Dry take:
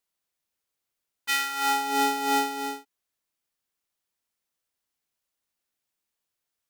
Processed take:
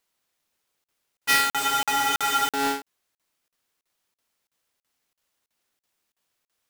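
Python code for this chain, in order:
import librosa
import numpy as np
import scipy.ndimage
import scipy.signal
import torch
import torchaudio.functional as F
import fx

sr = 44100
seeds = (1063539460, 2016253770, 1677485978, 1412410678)

p1 = fx.halfwave_hold(x, sr)
p2 = fx.low_shelf(p1, sr, hz=170.0, db=-4.0)
p3 = 10.0 ** (-27.5 / 20.0) * np.tanh(p2 / 10.0 ** (-27.5 / 20.0))
p4 = p2 + (p3 * librosa.db_to_amplitude(-3.5))
p5 = fx.spec_freeze(p4, sr, seeds[0], at_s=1.57, hold_s=0.93)
y = fx.buffer_crackle(p5, sr, first_s=0.84, period_s=0.33, block=2048, kind='zero')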